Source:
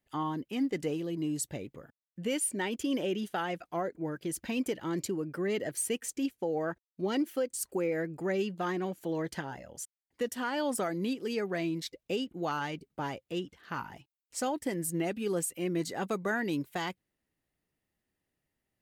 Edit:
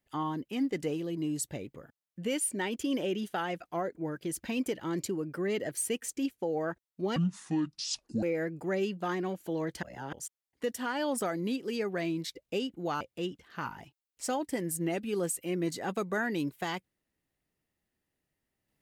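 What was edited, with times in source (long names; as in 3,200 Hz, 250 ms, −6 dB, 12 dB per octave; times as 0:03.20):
0:07.16–0:07.80: play speed 60%
0:09.40–0:09.70: reverse
0:12.58–0:13.14: remove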